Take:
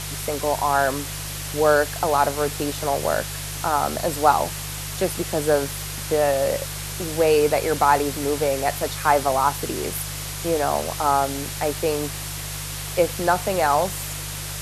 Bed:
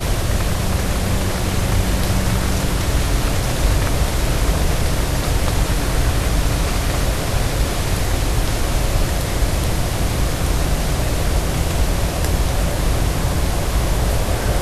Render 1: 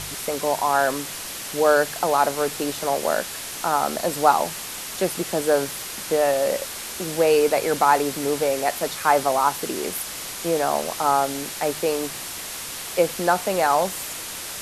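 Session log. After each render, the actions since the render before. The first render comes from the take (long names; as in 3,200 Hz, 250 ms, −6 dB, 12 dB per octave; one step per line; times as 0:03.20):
hum removal 50 Hz, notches 3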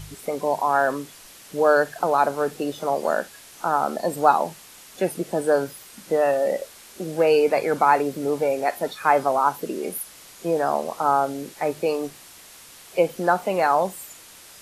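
noise reduction from a noise print 13 dB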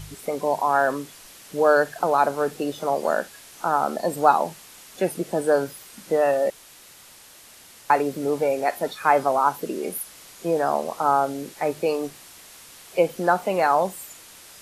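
0:06.50–0:07.90: fill with room tone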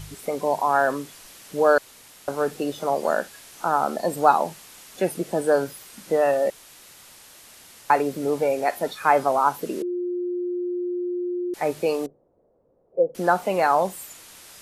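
0:01.78–0:02.28: fill with room tone
0:09.82–0:11.54: beep over 355 Hz −24 dBFS
0:12.06–0:13.15: transistor ladder low-pass 590 Hz, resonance 60%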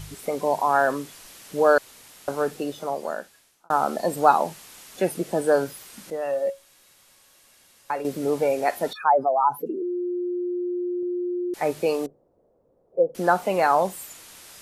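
0:02.32–0:03.70: fade out
0:06.10–0:08.05: tuned comb filter 550 Hz, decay 0.19 s, mix 70%
0:08.93–0:11.03: expanding power law on the bin magnitudes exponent 2.2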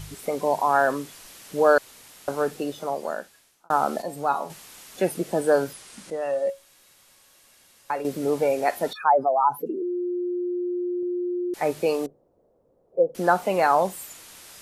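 0:04.02–0:04.50: tuned comb filter 140 Hz, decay 0.31 s, mix 70%
0:05.73–0:06.49: Butterworth low-pass 11,000 Hz 48 dB per octave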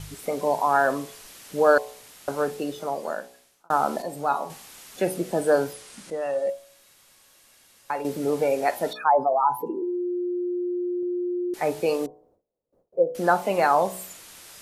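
hum removal 62 Hz, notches 18
noise gate with hold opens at −54 dBFS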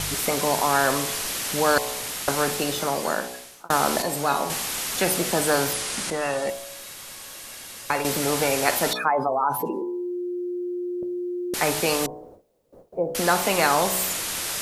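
every bin compressed towards the loudest bin 2 to 1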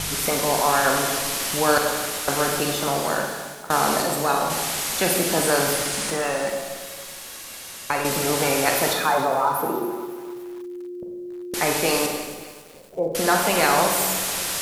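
four-comb reverb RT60 1.2 s, combs from 33 ms, DRR 2.5 dB
feedback echo at a low word length 277 ms, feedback 55%, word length 6 bits, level −14 dB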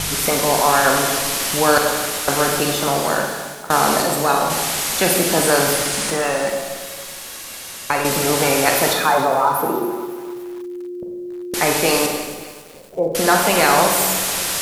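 level +4.5 dB
brickwall limiter −1 dBFS, peak gain reduction 1 dB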